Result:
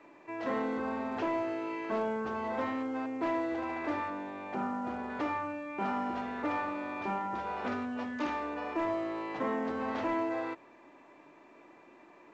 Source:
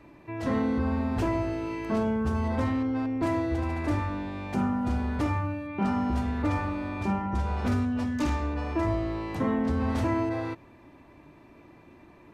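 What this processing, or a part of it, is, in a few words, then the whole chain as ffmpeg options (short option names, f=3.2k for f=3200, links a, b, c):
telephone: -filter_complex "[0:a]asettb=1/sr,asplit=3[a][b][c];[a]atrim=end=4.104[d];[b]atrim=start=4.1:end=5.1,asetpts=PTS-STARTPTS,afade=t=in:d=0.004:c=qsin,afade=t=out:st=0.996:d=0.004:c=qsin,highshelf=f=2.9k:g=-9[e];[c]atrim=start=5.096[f];[d][e]acrossfade=d=0.004:c1=hsin:c2=qsin[g];[g][f]acrossfade=d=0.004:c1=qsin:c2=hsin,highpass=390,lowpass=3.1k,asoftclip=type=tanh:threshold=-22dB" -ar 16000 -c:a pcm_mulaw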